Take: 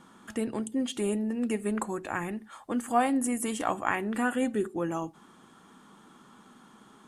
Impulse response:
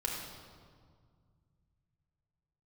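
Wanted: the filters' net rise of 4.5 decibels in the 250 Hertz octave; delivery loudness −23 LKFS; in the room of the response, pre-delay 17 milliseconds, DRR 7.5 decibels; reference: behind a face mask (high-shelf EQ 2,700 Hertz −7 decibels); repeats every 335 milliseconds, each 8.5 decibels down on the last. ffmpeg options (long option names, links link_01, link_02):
-filter_complex "[0:a]equalizer=frequency=250:width_type=o:gain=5,aecho=1:1:335|670|1005|1340:0.376|0.143|0.0543|0.0206,asplit=2[link_01][link_02];[1:a]atrim=start_sample=2205,adelay=17[link_03];[link_02][link_03]afir=irnorm=-1:irlink=0,volume=-11dB[link_04];[link_01][link_04]amix=inputs=2:normalize=0,highshelf=frequency=2700:gain=-7,volume=3.5dB"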